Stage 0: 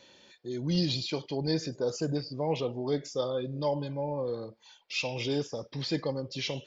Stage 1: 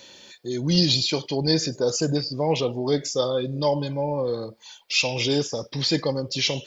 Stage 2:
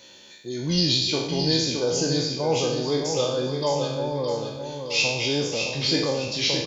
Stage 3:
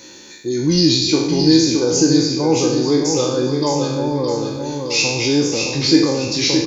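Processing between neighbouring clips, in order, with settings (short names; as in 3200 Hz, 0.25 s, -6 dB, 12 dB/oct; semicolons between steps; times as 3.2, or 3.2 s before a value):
high shelf 4900 Hz +11.5 dB; gain +7 dB
spectral trails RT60 0.80 s; feedback echo 0.616 s, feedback 41%, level -6.5 dB; gain -3.5 dB
thirty-one-band EQ 315 Hz +11 dB, 630 Hz -9 dB, 3150 Hz -11 dB, 6300 Hz +4 dB; in parallel at -1.5 dB: compressor, threshold -29 dBFS, peak gain reduction 15.5 dB; on the sum: gain +4 dB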